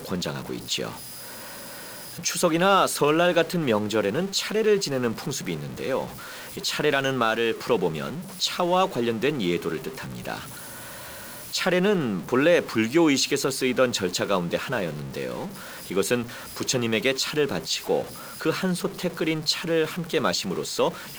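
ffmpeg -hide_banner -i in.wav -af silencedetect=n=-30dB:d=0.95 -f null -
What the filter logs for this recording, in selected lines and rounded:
silence_start: 0.91
silence_end: 2.19 | silence_duration: 1.28
silence_start: 10.38
silence_end: 11.54 | silence_duration: 1.16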